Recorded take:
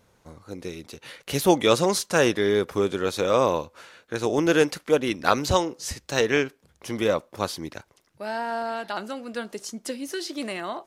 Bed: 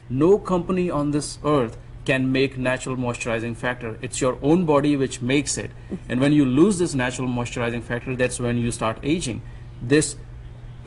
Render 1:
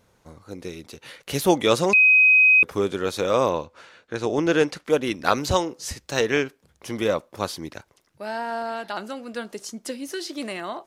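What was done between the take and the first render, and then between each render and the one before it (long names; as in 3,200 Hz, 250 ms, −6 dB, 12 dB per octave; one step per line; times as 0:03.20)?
0:01.93–0:02.63: beep over 2,520 Hz −11.5 dBFS
0:03.49–0:04.85: high-frequency loss of the air 52 metres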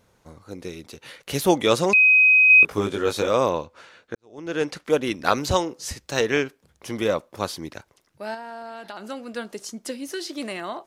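0:02.48–0:03.29: double-tracking delay 19 ms −3.5 dB
0:04.15–0:04.75: fade in quadratic
0:08.34–0:09.06: downward compressor 5 to 1, threshold −32 dBFS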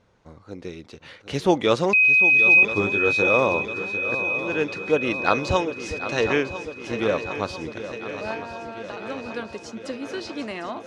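high-frequency loss of the air 110 metres
on a send: feedback echo with a long and a short gap by turns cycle 1,000 ms, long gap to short 3 to 1, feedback 65%, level −12 dB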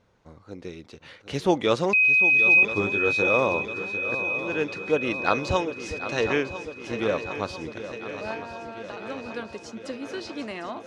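level −2.5 dB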